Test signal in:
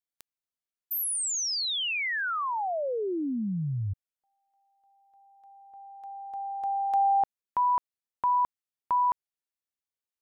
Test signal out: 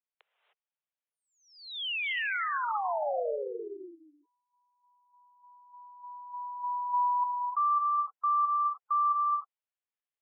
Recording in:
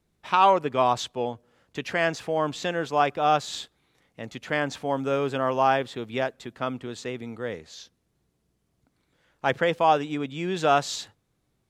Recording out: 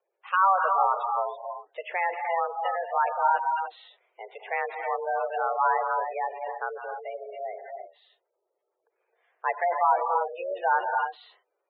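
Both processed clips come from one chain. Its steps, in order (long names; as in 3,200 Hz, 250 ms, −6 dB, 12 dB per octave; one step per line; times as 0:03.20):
reverb whose tail is shaped and stops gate 330 ms rising, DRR 3 dB
single-sideband voice off tune +190 Hz 240–3,100 Hz
gate on every frequency bin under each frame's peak −15 dB strong
level −2.5 dB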